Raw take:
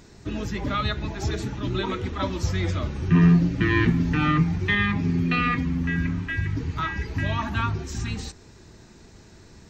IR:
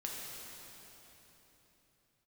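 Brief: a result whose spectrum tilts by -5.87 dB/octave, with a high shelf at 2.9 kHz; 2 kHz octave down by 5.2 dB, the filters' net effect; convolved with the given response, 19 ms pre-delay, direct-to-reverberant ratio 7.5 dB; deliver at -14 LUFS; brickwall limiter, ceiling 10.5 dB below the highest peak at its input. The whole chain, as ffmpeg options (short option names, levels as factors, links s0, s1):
-filter_complex "[0:a]equalizer=f=2000:t=o:g=-8,highshelf=f=2900:g=5,alimiter=limit=0.126:level=0:latency=1,asplit=2[s0][s1];[1:a]atrim=start_sample=2205,adelay=19[s2];[s1][s2]afir=irnorm=-1:irlink=0,volume=0.376[s3];[s0][s3]amix=inputs=2:normalize=0,volume=4.47"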